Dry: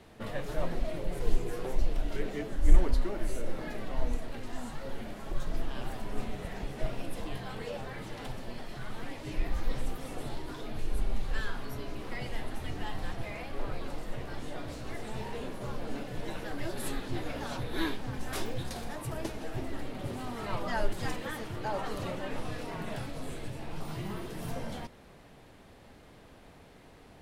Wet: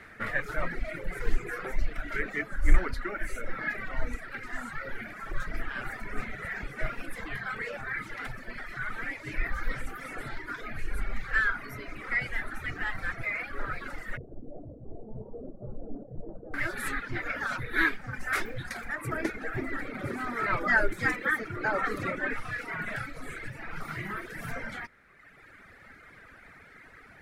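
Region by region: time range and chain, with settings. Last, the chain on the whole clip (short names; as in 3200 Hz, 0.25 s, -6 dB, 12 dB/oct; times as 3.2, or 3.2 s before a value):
14.17–16.54 steep low-pass 660 Hz + Doppler distortion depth 0.11 ms
19.03–22.34 bell 330 Hz +7.5 dB 1.7 oct + notch 2900 Hz, Q 16
whole clip: reverb removal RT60 1.6 s; band shelf 1700 Hz +16 dB 1.1 oct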